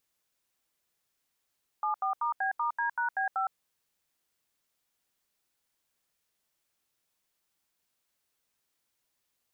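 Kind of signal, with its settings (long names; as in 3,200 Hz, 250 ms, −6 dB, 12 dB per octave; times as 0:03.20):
touch tones "74*B*D#B5", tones 112 ms, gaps 79 ms, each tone −29.5 dBFS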